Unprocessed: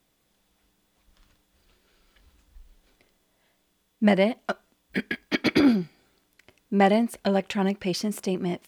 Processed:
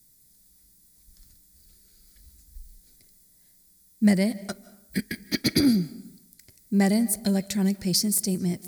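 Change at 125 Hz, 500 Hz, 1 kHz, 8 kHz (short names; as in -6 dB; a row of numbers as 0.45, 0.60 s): +3.0 dB, -7.0 dB, -11.0 dB, n/a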